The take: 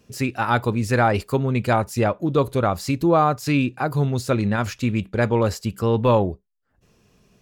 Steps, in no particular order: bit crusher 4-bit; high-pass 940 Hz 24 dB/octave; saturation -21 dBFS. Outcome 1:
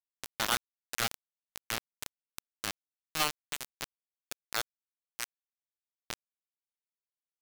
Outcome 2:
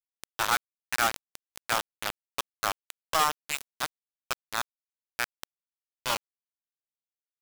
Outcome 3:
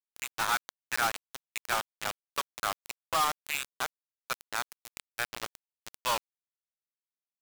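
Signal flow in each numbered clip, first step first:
saturation > high-pass > bit crusher; high-pass > saturation > bit crusher; high-pass > bit crusher > saturation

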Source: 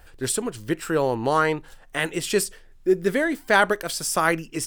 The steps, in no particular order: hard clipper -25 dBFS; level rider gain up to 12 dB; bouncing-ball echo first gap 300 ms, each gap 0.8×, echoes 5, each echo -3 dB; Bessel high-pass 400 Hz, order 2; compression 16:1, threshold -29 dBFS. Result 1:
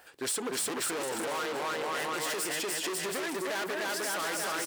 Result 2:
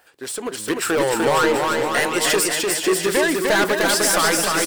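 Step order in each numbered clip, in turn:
bouncing-ball echo > level rider > hard clipper > Bessel high-pass > compression; Bessel high-pass > hard clipper > compression > level rider > bouncing-ball echo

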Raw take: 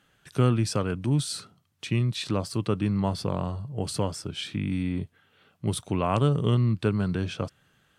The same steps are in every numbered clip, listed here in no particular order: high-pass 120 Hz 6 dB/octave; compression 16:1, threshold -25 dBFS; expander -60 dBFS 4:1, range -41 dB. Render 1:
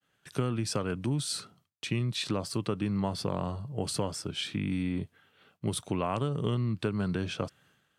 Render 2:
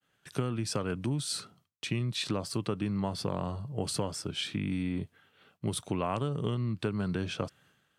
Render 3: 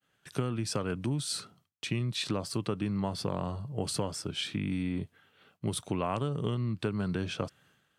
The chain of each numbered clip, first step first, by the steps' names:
expander > high-pass > compression; compression > expander > high-pass; expander > compression > high-pass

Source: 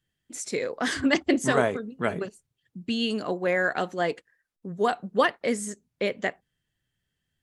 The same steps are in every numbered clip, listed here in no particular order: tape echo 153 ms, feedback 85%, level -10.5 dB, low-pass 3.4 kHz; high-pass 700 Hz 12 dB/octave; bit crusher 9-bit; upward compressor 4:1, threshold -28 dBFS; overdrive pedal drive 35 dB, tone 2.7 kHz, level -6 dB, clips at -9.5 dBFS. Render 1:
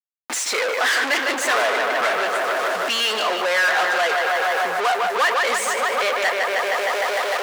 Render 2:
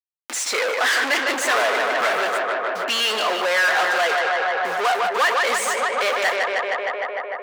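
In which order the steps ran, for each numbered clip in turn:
tape echo > bit crusher > upward compressor > overdrive pedal > high-pass; bit crusher > tape echo > overdrive pedal > upward compressor > high-pass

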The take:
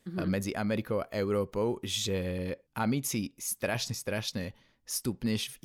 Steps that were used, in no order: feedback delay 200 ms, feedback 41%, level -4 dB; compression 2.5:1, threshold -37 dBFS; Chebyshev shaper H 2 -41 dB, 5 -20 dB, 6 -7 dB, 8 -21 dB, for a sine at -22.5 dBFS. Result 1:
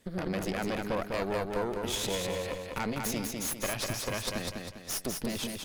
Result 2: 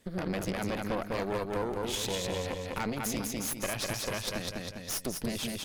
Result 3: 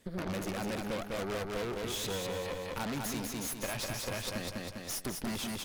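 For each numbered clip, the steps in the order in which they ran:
compression > Chebyshev shaper > feedback delay; feedback delay > compression > Chebyshev shaper; Chebyshev shaper > feedback delay > compression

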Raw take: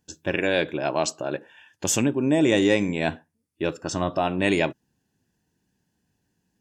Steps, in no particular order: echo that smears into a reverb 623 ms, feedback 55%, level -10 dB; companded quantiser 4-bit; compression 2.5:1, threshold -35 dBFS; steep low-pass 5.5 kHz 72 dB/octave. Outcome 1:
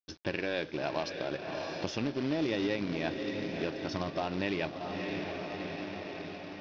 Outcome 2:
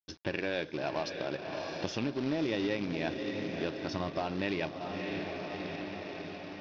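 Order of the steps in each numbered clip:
echo that smears into a reverb > compression > companded quantiser > steep low-pass; echo that smears into a reverb > companded quantiser > compression > steep low-pass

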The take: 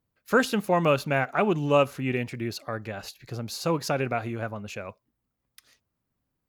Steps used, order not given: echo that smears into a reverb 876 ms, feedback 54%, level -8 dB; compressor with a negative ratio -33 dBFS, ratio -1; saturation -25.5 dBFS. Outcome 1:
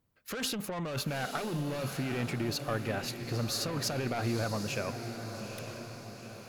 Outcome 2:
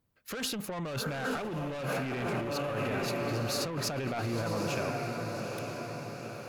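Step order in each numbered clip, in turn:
saturation > compressor with a negative ratio > echo that smears into a reverb; echo that smears into a reverb > saturation > compressor with a negative ratio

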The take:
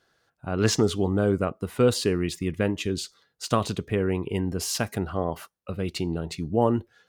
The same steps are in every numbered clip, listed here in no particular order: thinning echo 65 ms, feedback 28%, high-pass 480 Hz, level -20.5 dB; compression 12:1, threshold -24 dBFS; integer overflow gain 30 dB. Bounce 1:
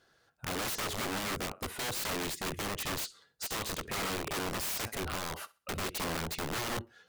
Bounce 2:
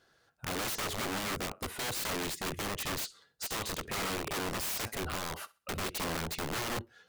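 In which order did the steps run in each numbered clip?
thinning echo > compression > integer overflow; compression > thinning echo > integer overflow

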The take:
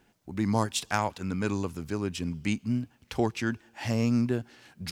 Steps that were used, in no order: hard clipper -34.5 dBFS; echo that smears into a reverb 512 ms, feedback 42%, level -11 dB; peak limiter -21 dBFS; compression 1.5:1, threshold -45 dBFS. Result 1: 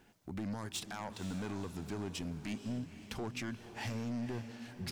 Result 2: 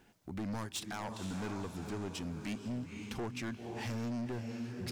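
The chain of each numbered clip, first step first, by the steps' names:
peak limiter > compression > hard clipper > echo that smears into a reverb; echo that smears into a reverb > compression > peak limiter > hard clipper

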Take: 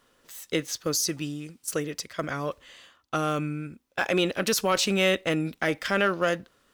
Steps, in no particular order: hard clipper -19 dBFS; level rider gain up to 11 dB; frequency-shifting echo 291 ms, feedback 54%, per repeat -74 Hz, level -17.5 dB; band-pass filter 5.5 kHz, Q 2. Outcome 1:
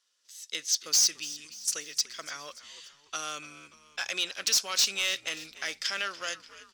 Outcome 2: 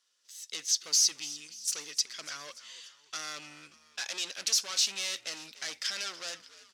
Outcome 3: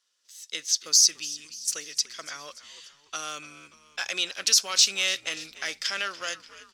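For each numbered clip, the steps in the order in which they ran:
level rider > band-pass filter > hard clipper > frequency-shifting echo; level rider > hard clipper > frequency-shifting echo > band-pass filter; band-pass filter > hard clipper > level rider > frequency-shifting echo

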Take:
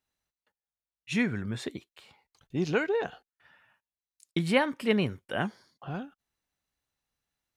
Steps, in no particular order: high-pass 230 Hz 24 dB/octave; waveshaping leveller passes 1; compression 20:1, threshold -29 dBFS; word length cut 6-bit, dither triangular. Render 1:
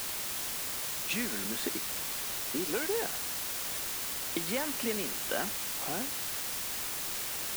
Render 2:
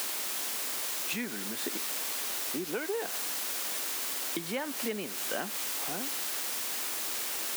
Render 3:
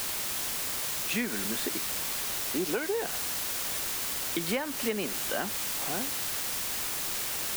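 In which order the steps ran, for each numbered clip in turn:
waveshaping leveller > compression > high-pass > word length cut; word length cut > waveshaping leveller > compression > high-pass; high-pass > word length cut > compression > waveshaping leveller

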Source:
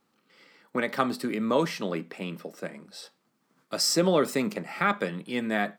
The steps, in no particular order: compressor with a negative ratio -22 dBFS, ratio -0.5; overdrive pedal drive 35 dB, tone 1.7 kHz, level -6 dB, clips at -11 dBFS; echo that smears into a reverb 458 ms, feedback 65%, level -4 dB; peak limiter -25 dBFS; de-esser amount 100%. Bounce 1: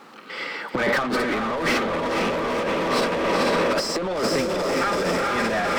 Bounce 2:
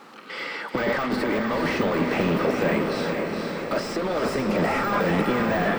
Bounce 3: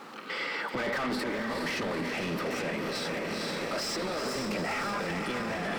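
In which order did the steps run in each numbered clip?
echo that smears into a reverb > peak limiter > de-esser > overdrive pedal > compressor with a negative ratio; peak limiter > overdrive pedal > compressor with a negative ratio > de-esser > echo that smears into a reverb; de-esser > overdrive pedal > compressor with a negative ratio > echo that smears into a reverb > peak limiter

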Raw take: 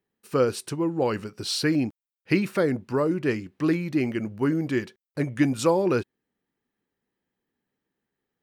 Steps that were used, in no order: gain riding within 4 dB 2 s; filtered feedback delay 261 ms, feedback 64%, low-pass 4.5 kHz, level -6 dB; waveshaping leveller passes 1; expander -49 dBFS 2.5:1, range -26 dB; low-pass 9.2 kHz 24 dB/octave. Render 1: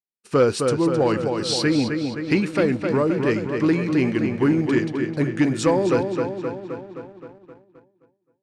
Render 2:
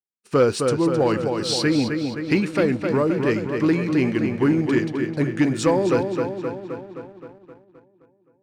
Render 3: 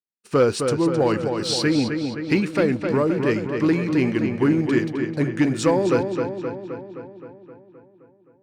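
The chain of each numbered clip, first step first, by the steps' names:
gain riding > filtered feedback delay > expander > waveshaping leveller > low-pass; low-pass > expander > gain riding > filtered feedback delay > waveshaping leveller; gain riding > expander > low-pass > waveshaping leveller > filtered feedback delay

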